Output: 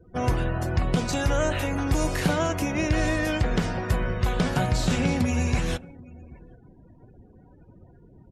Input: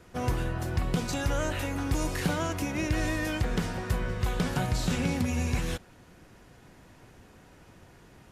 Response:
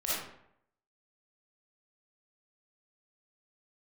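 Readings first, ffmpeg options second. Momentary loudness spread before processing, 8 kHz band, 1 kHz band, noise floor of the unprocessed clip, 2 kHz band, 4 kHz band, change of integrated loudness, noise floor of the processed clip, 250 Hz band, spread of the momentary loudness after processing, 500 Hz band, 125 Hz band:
3 LU, +3.0 dB, +5.0 dB, −55 dBFS, +4.5 dB, +4.0 dB, +4.5 dB, −53 dBFS, +4.5 dB, 3 LU, +6.0 dB, +4.5 dB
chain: -af "aecho=1:1:784:0.0841,afftdn=noise_reduction=34:noise_floor=-50,adynamicequalizer=threshold=0.00355:dfrequency=640:dqfactor=4.6:tfrequency=640:tqfactor=4.6:attack=5:release=100:ratio=0.375:range=2:mode=boostabove:tftype=bell,volume=4.5dB"

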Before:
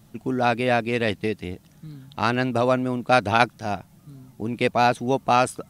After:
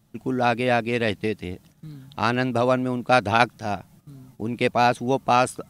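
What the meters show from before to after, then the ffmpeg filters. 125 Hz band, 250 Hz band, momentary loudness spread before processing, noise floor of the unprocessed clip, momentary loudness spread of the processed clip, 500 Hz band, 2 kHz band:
0.0 dB, 0.0 dB, 14 LU, −54 dBFS, 14 LU, 0.0 dB, 0.0 dB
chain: -af "agate=range=-9dB:threshold=-50dB:ratio=16:detection=peak"

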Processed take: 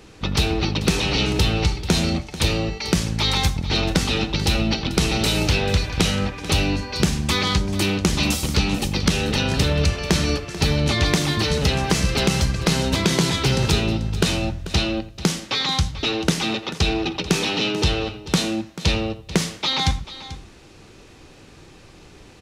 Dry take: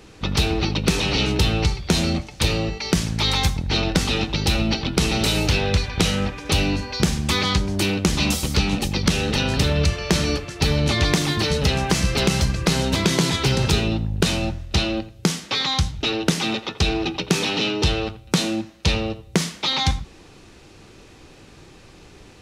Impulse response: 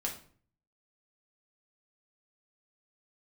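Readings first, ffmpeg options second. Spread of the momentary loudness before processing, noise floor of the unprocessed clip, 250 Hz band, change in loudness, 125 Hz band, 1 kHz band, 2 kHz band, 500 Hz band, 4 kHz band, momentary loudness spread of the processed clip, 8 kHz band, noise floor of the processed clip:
4 LU, −47 dBFS, 0.0 dB, 0.0 dB, 0.0 dB, 0.0 dB, 0.0 dB, 0.0 dB, 0.0 dB, 5 LU, 0.0 dB, −46 dBFS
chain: -af "aecho=1:1:439:0.178"

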